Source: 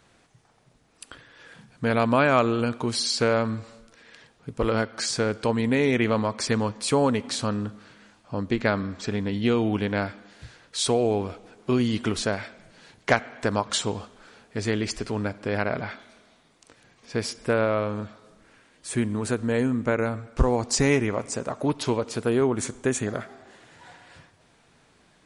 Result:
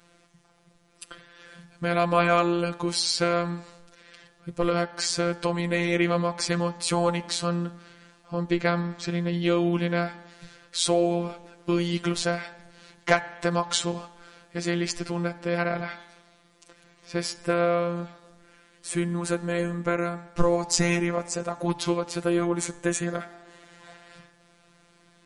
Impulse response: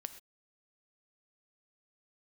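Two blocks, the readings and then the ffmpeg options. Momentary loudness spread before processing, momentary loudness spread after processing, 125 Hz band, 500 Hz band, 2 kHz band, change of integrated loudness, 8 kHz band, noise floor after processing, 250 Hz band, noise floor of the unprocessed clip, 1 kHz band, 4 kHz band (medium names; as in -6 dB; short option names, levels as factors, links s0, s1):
13 LU, 13 LU, -1.0 dB, -1.5 dB, -0.5 dB, -1.0 dB, +0.5 dB, -60 dBFS, -1.5 dB, -61 dBFS, 0.0 dB, +0.5 dB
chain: -af "afftfilt=real='hypot(re,im)*cos(PI*b)':imag='0':win_size=1024:overlap=0.75,bandreject=f=143.7:t=h:w=4,bandreject=f=287.4:t=h:w=4,bandreject=f=431.1:t=h:w=4,bandreject=f=574.8:t=h:w=4,bandreject=f=718.5:t=h:w=4,bandreject=f=862.2:t=h:w=4,bandreject=f=1005.9:t=h:w=4,bandreject=f=1149.6:t=h:w=4,bandreject=f=1293.3:t=h:w=4,bandreject=f=1437:t=h:w=4,bandreject=f=1580.7:t=h:w=4,bandreject=f=1724.4:t=h:w=4,bandreject=f=1868.1:t=h:w=4,bandreject=f=2011.8:t=h:w=4,bandreject=f=2155.5:t=h:w=4,bandreject=f=2299.2:t=h:w=4,bandreject=f=2442.9:t=h:w=4,volume=1.58"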